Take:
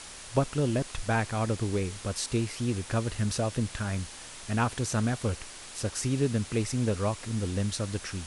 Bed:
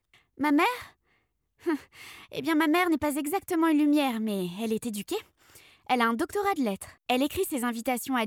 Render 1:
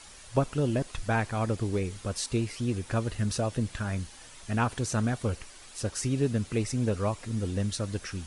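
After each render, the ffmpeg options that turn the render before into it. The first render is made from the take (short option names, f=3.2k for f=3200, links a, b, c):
-af "afftdn=nr=8:nf=-45"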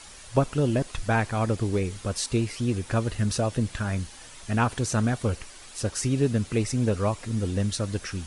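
-af "volume=3.5dB"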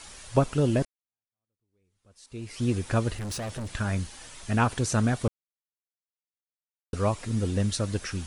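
-filter_complex "[0:a]asettb=1/sr,asplit=3[a][b][c];[a]atrim=end=3.154[d];[b]atrim=start=3.15:end=3.71,asetpts=PTS-STARTPTS,afade=t=in:d=0.004:c=qsin,afade=t=out:st=0.556:d=0.004:c=qsin,asoftclip=type=hard:threshold=-31.5dB[e];[c]atrim=start=3.706[f];[d][e]acrossfade=d=0.004:c1=hsin:c2=qsin[g];[g][f]acrossfade=d=0.004:c1=qsin:c2=hsin,asplit=4[h][i][j][k];[h]atrim=end=0.85,asetpts=PTS-STARTPTS,afade=t=out:st=0.846:d=0.004:c=hsin[l];[i]atrim=start=0.85:end=5.28,asetpts=PTS-STARTPTS,afade=t=in:d=1.78:c=exp,afade=t=out:st=4.426:d=0.004:c=hsin[m];[j]atrim=start=5.28:end=6.93,asetpts=PTS-STARTPTS,volume=0[n];[k]atrim=start=6.93,asetpts=PTS-STARTPTS,afade=t=in:d=0.004:c=hsin[o];[l][m][n][o]concat=n=4:v=0:a=1"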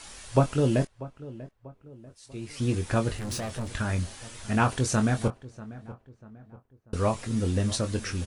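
-filter_complex "[0:a]asplit=2[a][b];[b]adelay=23,volume=-8dB[c];[a][c]amix=inputs=2:normalize=0,asplit=2[d][e];[e]adelay=641,lowpass=f=1.6k:p=1,volume=-17dB,asplit=2[f][g];[g]adelay=641,lowpass=f=1.6k:p=1,volume=0.45,asplit=2[h][i];[i]adelay=641,lowpass=f=1.6k:p=1,volume=0.45,asplit=2[j][k];[k]adelay=641,lowpass=f=1.6k:p=1,volume=0.45[l];[d][f][h][j][l]amix=inputs=5:normalize=0"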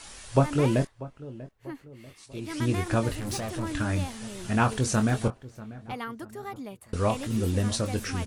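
-filter_complex "[1:a]volume=-11.5dB[a];[0:a][a]amix=inputs=2:normalize=0"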